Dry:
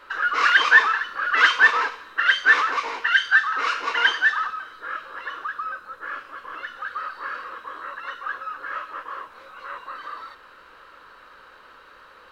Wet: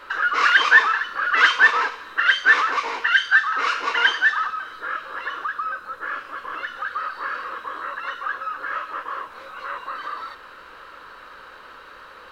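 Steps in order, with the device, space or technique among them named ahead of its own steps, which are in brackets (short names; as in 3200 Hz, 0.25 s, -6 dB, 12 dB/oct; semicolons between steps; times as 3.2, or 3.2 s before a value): parallel compression (in parallel at -1 dB: compressor, threshold -34 dBFS, peak gain reduction 23 dB)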